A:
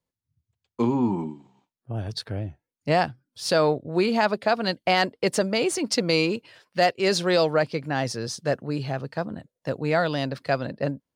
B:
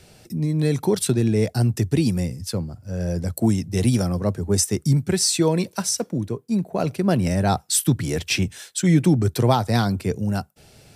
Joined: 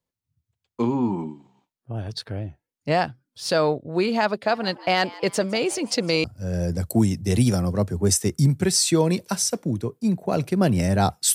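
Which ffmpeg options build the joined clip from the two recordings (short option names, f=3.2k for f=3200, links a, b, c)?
-filter_complex "[0:a]asplit=3[a][b][c];[a]afade=t=out:st=4.48:d=0.02[d];[b]asplit=5[e][f][g][h][i];[f]adelay=159,afreqshift=130,volume=-20dB[j];[g]adelay=318,afreqshift=260,volume=-26.4dB[k];[h]adelay=477,afreqshift=390,volume=-32.8dB[l];[i]adelay=636,afreqshift=520,volume=-39.1dB[m];[e][j][k][l][m]amix=inputs=5:normalize=0,afade=t=in:st=4.48:d=0.02,afade=t=out:st=6.24:d=0.02[n];[c]afade=t=in:st=6.24:d=0.02[o];[d][n][o]amix=inputs=3:normalize=0,apad=whole_dur=11.34,atrim=end=11.34,atrim=end=6.242[p];[1:a]atrim=start=2.708:end=7.81[q];[p][q]acrossfade=d=0.004:c1=hsin:c2=hsin"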